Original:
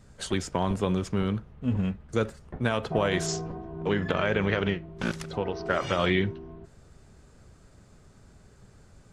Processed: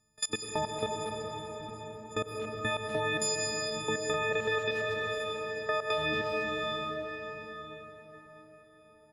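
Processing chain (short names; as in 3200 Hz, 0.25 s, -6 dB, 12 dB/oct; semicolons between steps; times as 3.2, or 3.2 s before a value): frequency quantiser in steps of 6 st; level quantiser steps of 23 dB; 4.31–5.98 ten-band EQ 125 Hz -3 dB, 250 Hz -9 dB, 500 Hz +6 dB, 4000 Hz +4 dB; speakerphone echo 0.23 s, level -9 dB; on a send at -2.5 dB: reverb RT60 5.5 s, pre-delay 83 ms; on the sum: compressor 3:1, threshold -24 dBFS, peak gain reduction 6 dB; low shelf 66 Hz -5 dB; gain -4 dB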